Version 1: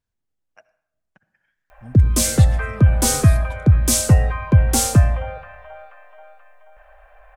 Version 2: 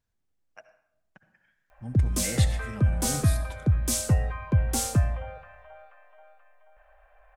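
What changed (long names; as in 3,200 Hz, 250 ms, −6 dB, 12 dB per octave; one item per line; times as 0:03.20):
speech: send +7.0 dB
background −9.5 dB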